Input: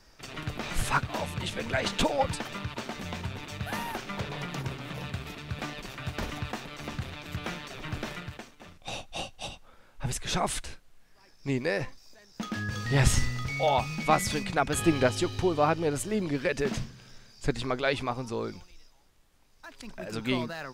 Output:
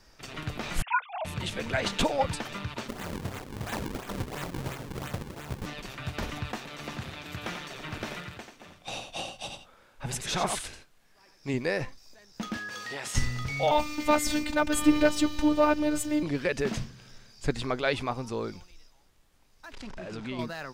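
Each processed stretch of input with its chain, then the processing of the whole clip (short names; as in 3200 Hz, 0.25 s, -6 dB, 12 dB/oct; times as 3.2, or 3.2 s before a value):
0.82–1.25 sine-wave speech + HPF 570 Hz 24 dB/oct + bell 1800 Hz -12.5 dB 0.29 oct
2.87–5.65 spectral whitening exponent 0.6 + decimation with a swept rate 39×, swing 160% 2.9 Hz
6.58–11.54 low shelf 110 Hz -9 dB + echo 89 ms -6.5 dB
12.57–13.15 HPF 460 Hz + compressor, threshold -33 dBFS
13.71–16.23 bell 94 Hz +4.5 dB 2.9 oct + sample leveller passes 1 + robotiser 301 Hz
19.73–20.39 zero-crossing step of -37.5 dBFS + compressor 2:1, threshold -38 dBFS + air absorption 85 m
whole clip: dry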